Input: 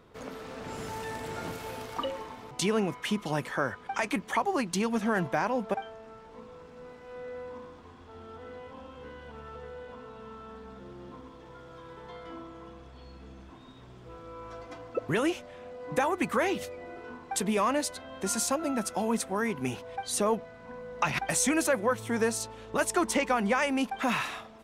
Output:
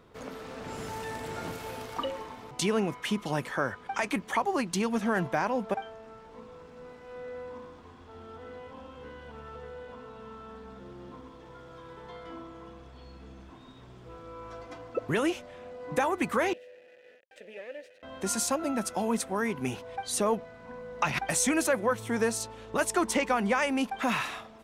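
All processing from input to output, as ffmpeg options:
ffmpeg -i in.wav -filter_complex "[0:a]asettb=1/sr,asplit=3[link_01][link_02][link_03];[link_01]atrim=end=16.534[link_04];[link_02]atrim=start=16.53:end=18.03,asetpts=PTS-STARTPTS,afade=type=in:duration=0.004:curve=qsin,afade=type=out:start_time=1.496:duration=0.004:curve=qsin,equalizer=frequency=780:width_type=o:width=0.3:gain=-4.5,acrusher=bits=4:dc=4:mix=0:aa=0.000001,asplit=3[link_05][link_06][link_07];[link_05]bandpass=frequency=530:width_type=q:width=8,volume=0dB[link_08];[link_06]bandpass=frequency=1840:width_type=q:width=8,volume=-6dB[link_09];[link_07]bandpass=frequency=2480:width_type=q:width=8,volume=-9dB[link_10];[link_08][link_09][link_10]amix=inputs=3:normalize=0[link_11];[link_03]atrim=start=18.026[link_12];[link_04][link_11]acrossfade=duration=0.004:curve1=hsin:curve2=qsin[link_13];[link_13][link_12]acrossfade=duration=0.004:curve1=qsin:curve2=hsin" out.wav

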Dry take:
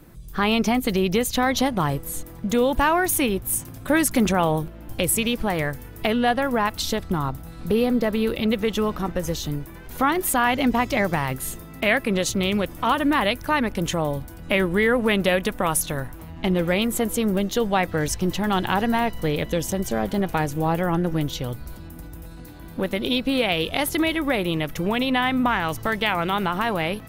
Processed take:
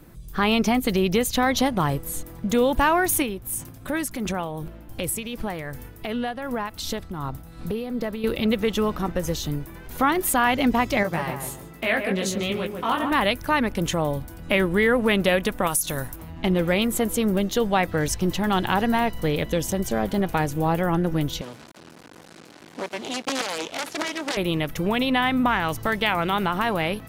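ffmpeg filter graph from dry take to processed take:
ffmpeg -i in.wav -filter_complex "[0:a]asettb=1/sr,asplit=3[link_01][link_02][link_03];[link_01]atrim=end=3.224[link_04];[link_02]atrim=start=3.22:end=8.24,asetpts=PTS-STARTPTS,afade=type=in:duration=0.004:curve=qsin,afade=type=out:start_time=5.016:duration=0.004:curve=qsin,acompressor=threshold=-26dB:ratio=2:attack=3.2:release=140:knee=1:detection=peak,tremolo=f=2.7:d=0.47[link_05];[link_03]atrim=start=8.236[link_06];[link_04][link_05]acrossfade=duration=0.004:curve1=hsin:curve2=qsin[link_07];[link_07][link_06]acrossfade=duration=0.004:curve1=qsin:curve2=hsin,asettb=1/sr,asplit=3[link_08][link_09][link_10];[link_08]atrim=end=11.034[link_11];[link_09]atrim=start=11.03:end=13.12,asetpts=PTS-STARTPTS,afade=type=in:duration=0.004:curve=qsin,afade=type=out:start_time=2.086:duration=0.004:curve=qsin,flanger=delay=17:depth=3.9:speed=1.3,highpass=frequency=120:poles=1,asplit=2[link_12][link_13];[link_13]adelay=143,lowpass=frequency=1300:poles=1,volume=-4.5dB,asplit=2[link_14][link_15];[link_15]adelay=143,lowpass=frequency=1300:poles=1,volume=0.37,asplit=2[link_16][link_17];[link_17]adelay=143,lowpass=frequency=1300:poles=1,volume=0.37,asplit=2[link_18][link_19];[link_19]adelay=143,lowpass=frequency=1300:poles=1,volume=0.37,asplit=2[link_20][link_21];[link_21]adelay=143,lowpass=frequency=1300:poles=1,volume=0.37[link_22];[link_12][link_14][link_16][link_18][link_20][link_22]amix=inputs=6:normalize=0,atrim=end_sample=92169[link_23];[link_10]atrim=start=13.116[link_24];[link_11][link_23]acrossfade=duration=0.004:curve1=hsin:curve2=qsin[link_25];[link_25][link_24]acrossfade=duration=0.004:curve1=qsin:curve2=hsin,asettb=1/sr,asplit=3[link_26][link_27][link_28];[link_26]atrim=end=15.674[link_29];[link_27]atrim=start=15.67:end=16.16,asetpts=PTS-STARTPTS,afade=type=in:duration=0.004:curve=qsin,afade=type=out:start_time=0.486:duration=0.004:curve=qsin,bass=frequency=250:gain=-1,treble=frequency=4000:gain=11,acompressor=threshold=-22dB:ratio=3:attack=3.2:release=140:knee=1:detection=peak[link_30];[link_28]atrim=start=16.156[link_31];[link_29][link_30]acrossfade=duration=0.004:curve1=hsin:curve2=qsin[link_32];[link_32][link_31]acrossfade=duration=0.004:curve1=qsin:curve2=hsin,asettb=1/sr,asplit=3[link_33][link_34][link_35];[link_33]atrim=end=21.414[link_36];[link_34]atrim=start=21.41:end=24.37,asetpts=PTS-STARTPTS,afade=type=in:duration=0.004:curve=qsin,afade=type=out:start_time=2.956:duration=0.004:curve=qsin,acrusher=bits=4:dc=4:mix=0:aa=0.000001,aeval=exprs='(mod(5.96*val(0)+1,2)-1)/5.96':channel_layout=same,highpass=220,lowpass=7200[link_37];[link_35]atrim=start=24.366[link_38];[link_36][link_37]acrossfade=duration=0.004:curve1=hsin:curve2=qsin[link_39];[link_39][link_38]acrossfade=duration=0.004:curve1=qsin:curve2=hsin" out.wav

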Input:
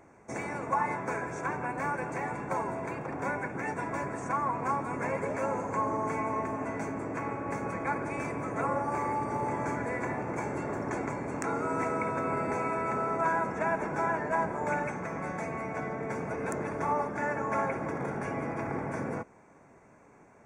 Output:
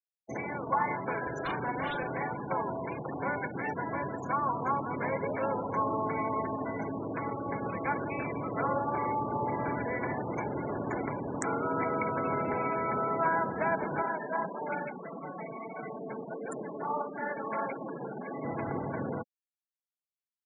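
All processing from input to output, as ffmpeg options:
ffmpeg -i in.wav -filter_complex "[0:a]asettb=1/sr,asplit=3[link_01][link_02][link_03];[link_01]atrim=end=1.224[link_04];[link_02]atrim=start=1.22:end=2.23,asetpts=PTS-STARTPTS,afade=type=in:duration=0.004:curve=qsin,afade=type=out:start_time=1.006:duration=0.004:curve=qsin,aeval=exprs='0.0398*(abs(mod(val(0)/0.0398+3,4)-2)-1)':channel_layout=same,asplit=2[link_05][link_06];[link_06]adelay=41,volume=-3.5dB[link_07];[link_05][link_07]amix=inputs=2:normalize=0,atrim=end_sample=44541[link_08];[link_03]atrim=start=2.226[link_09];[link_04][link_08]acrossfade=duration=0.004:curve1=hsin:curve2=qsin[link_10];[link_10][link_09]acrossfade=duration=0.004:curve1=qsin:curve2=hsin,asettb=1/sr,asplit=3[link_11][link_12][link_13];[link_11]atrim=end=14.024[link_14];[link_12]atrim=start=14.02:end=18.44,asetpts=PTS-STARTPTS,afade=type=in:duration=0.004:curve=qsin,afade=type=out:start_time=4.416:duration=0.004:curve=qsin,highpass=frequency=160:width=0.5412,highpass=frequency=160:width=1.3066,flanger=delay=6.3:depth=9.8:regen=-27:speed=1.6:shape=triangular[link_15];[link_13]atrim=start=18.436[link_16];[link_14][link_15]acrossfade=duration=0.004:curve1=hsin:curve2=qsin[link_17];[link_17][link_16]acrossfade=duration=0.004:curve1=qsin:curve2=hsin,highshelf=frequency=5400:gain=8,afftfilt=real='re*gte(hypot(re,im),0.0251)':imag='im*gte(hypot(re,im),0.0251)':win_size=1024:overlap=0.75" out.wav

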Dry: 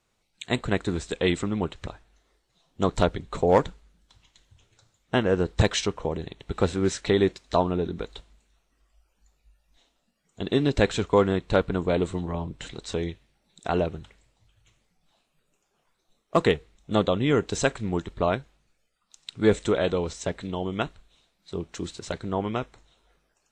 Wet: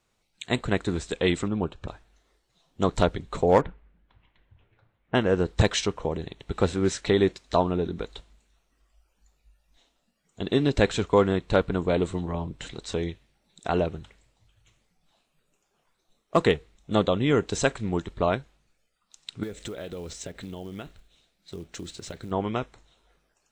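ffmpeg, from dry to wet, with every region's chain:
ffmpeg -i in.wav -filter_complex "[0:a]asettb=1/sr,asplit=3[link_01][link_02][link_03];[link_01]atrim=end=1.484[link_04];[link_02]atrim=start=1.48:end=1.88,asetpts=PTS-STARTPTS,afade=type=in:duration=0.004:curve=qsin,afade=type=out:start_time=0.396:duration=0.004:curve=qsin,asuperstop=centerf=2000:order=4:qfactor=4.6,highshelf=frequency=2800:gain=-11[link_05];[link_03]atrim=start=1.876[link_06];[link_04][link_05]acrossfade=duration=0.004:curve1=hsin:curve2=qsin[link_07];[link_07][link_06]acrossfade=duration=0.004:curve1=qsin:curve2=hsin,asettb=1/sr,asplit=3[link_08][link_09][link_10];[link_08]atrim=end=3.614[link_11];[link_09]atrim=start=3.61:end=5.15,asetpts=PTS-STARTPTS,afade=type=in:duration=0.004:curve=qsin,afade=type=out:start_time=1.536:duration=0.004:curve=qsin,lowpass=frequency=2500:width=0.5412,lowpass=frequency=2500:width=1.3066,bandreject=frequency=1300:width=26[link_12];[link_10]atrim=start=5.146[link_13];[link_11][link_12]acrossfade=duration=0.004:curve1=hsin:curve2=qsin[link_14];[link_14][link_13]acrossfade=duration=0.004:curve1=qsin:curve2=hsin,asettb=1/sr,asplit=3[link_15][link_16][link_17];[link_15]atrim=end=19.434[link_18];[link_16]atrim=start=19.43:end=22.31,asetpts=PTS-STARTPTS,afade=type=in:duration=0.004:curve=qsin,afade=type=out:start_time=2.876:duration=0.004:curve=qsin,equalizer=frequency=1000:width_type=o:width=0.55:gain=-6.5,acompressor=threshold=-32dB:ratio=10:attack=3.2:release=140:knee=1:detection=peak,acrusher=bits=6:mode=log:mix=0:aa=0.000001[link_19];[link_17]atrim=start=22.306[link_20];[link_18][link_19]acrossfade=duration=0.004:curve1=hsin:curve2=qsin[link_21];[link_21][link_20]acrossfade=duration=0.004:curve1=qsin:curve2=hsin" out.wav

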